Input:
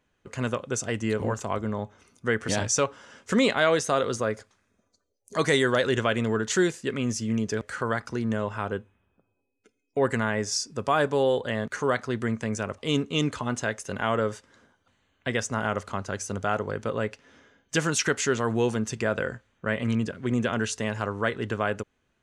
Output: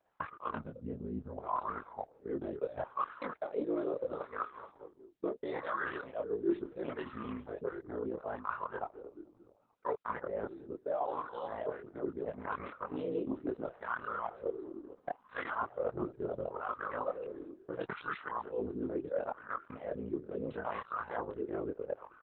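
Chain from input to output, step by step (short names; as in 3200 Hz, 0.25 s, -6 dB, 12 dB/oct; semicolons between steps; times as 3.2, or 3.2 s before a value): local time reversal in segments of 0.201 s; low shelf 110 Hz +10 dB; frequency-shifting echo 0.219 s, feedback 61%, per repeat -61 Hz, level -22.5 dB; ring modulator 28 Hz; wah 0.73 Hz 340–1200 Hz, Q 4.1; in parallel at +2 dB: level quantiser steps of 16 dB; on the sum: spectral gain 0.55–1.37, 270–6300 Hz -16 dB; reverse; compressor 6:1, threshold -43 dBFS, peak gain reduction 22 dB; reverse; chorus voices 4, 0.24 Hz, delay 25 ms, depth 2 ms; bell 1300 Hz +3 dB 0.45 oct; gain +13 dB; Opus 8 kbps 48000 Hz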